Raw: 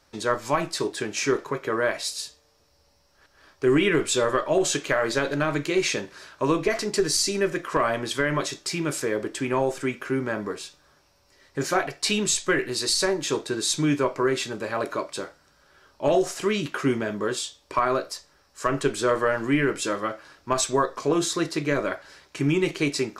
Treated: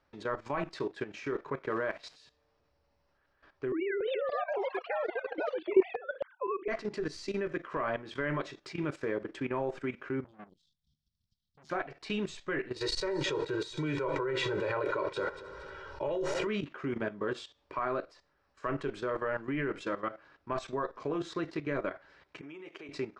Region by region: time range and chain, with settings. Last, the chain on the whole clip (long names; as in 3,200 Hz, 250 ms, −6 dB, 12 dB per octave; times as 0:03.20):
0:01.63–0:02.16: low-pass filter 7,900 Hz + centre clipping without the shift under −37 dBFS
0:03.72–0:06.68: three sine waves on the formant tracks + delay with pitch and tempo change per echo 286 ms, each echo +5 semitones, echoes 3, each echo −6 dB
0:10.24–0:11.70: Chebyshev band-stop filter 220–3,300 Hz, order 5 + hard clipping −29.5 dBFS + saturating transformer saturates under 1,100 Hz
0:12.76–0:16.47: comb filter 2.1 ms, depth 97% + echo machine with several playback heads 77 ms, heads first and third, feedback 45%, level −21 dB + envelope flattener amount 50%
0:22.41–0:22.89: notch filter 4,200 Hz, Q 5.4 + downward compressor 3 to 1, threshold −31 dBFS + high-pass filter 380 Hz
whole clip: low-pass filter 2,600 Hz 12 dB per octave; output level in coarse steps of 14 dB; level −4 dB